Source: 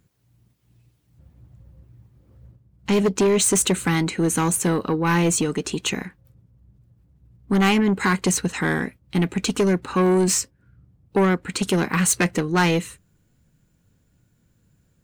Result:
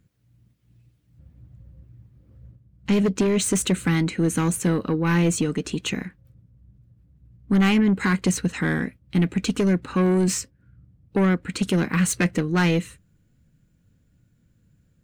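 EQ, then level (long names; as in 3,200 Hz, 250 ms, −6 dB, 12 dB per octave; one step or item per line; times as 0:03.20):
parametric band 390 Hz −5 dB 0.34 octaves
parametric band 880 Hz −8 dB 1.1 octaves
high-shelf EQ 3,100 Hz −8.5 dB
+1.5 dB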